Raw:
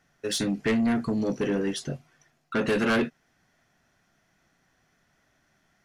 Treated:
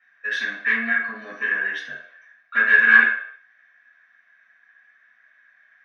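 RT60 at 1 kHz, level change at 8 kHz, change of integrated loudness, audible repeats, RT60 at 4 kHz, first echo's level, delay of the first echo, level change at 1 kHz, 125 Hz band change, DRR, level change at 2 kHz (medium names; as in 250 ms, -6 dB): 0.65 s, under -10 dB, +8.5 dB, no echo, 0.55 s, no echo, no echo, +3.0 dB, under -15 dB, -8.0 dB, +18.5 dB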